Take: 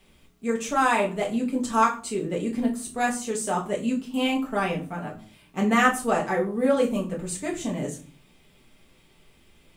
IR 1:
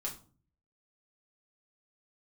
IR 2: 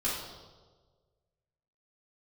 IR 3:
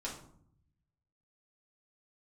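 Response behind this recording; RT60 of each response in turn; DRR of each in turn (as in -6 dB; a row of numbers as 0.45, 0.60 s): 1; 0.40, 1.5, 0.65 s; -3.0, -9.0, -5.5 dB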